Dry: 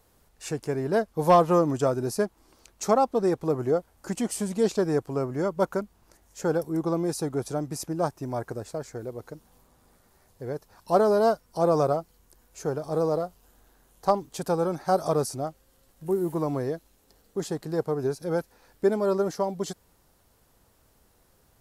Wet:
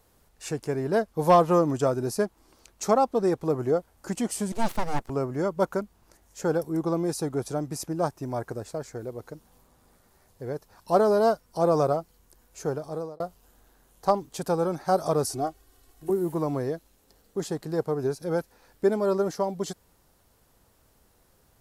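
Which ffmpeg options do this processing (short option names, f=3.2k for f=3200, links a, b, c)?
-filter_complex "[0:a]asettb=1/sr,asplit=3[a][b][c];[a]atrim=end=4.524[d];[b]atrim=start=4.52:end=5.1,asetpts=PTS-STARTPTS,afade=t=in:d=0.004:c=qsin,afade=t=out:st=0.576:d=0.004:c=qsin,aeval=exprs='abs(val(0))':c=same[e];[c]atrim=start=5.096[f];[d][e]acrossfade=d=0.004:c1=hsin:c2=qsin[g];[g][f]acrossfade=d=0.004:c1=qsin:c2=hsin,asettb=1/sr,asplit=3[h][i][j];[h]atrim=end=15.244[k];[i]atrim=start=15.24:end=16.1,asetpts=PTS-STARTPTS,afade=t=in:d=0.004:c=qsin,afade=t=out:st=0.856:d=0.004:c=qsin,aecho=1:1:2.7:0.96,atrim=end_sample=37926[l];[j]atrim=start=16.096[m];[k][l]acrossfade=d=0.004:c1=hsin:c2=qsin[n];[n][m]acrossfade=d=0.004:c1=qsin:c2=hsin,asplit=2[o][p];[o]atrim=end=13.2,asetpts=PTS-STARTPTS,afade=t=out:st=12.71:d=0.49[q];[p]atrim=start=13.2,asetpts=PTS-STARTPTS,afade=t=in:d=0.004:c=hsin[r];[q][r]concat=n=2:v=0:a=1"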